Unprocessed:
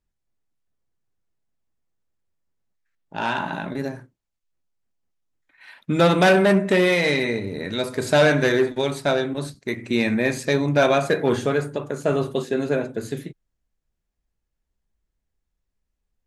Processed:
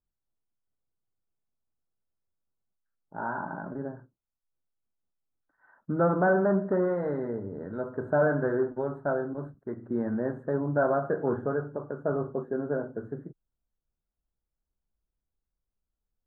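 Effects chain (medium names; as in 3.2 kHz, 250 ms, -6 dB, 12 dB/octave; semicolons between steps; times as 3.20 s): elliptic low-pass 1.5 kHz, stop band 40 dB; trim -7 dB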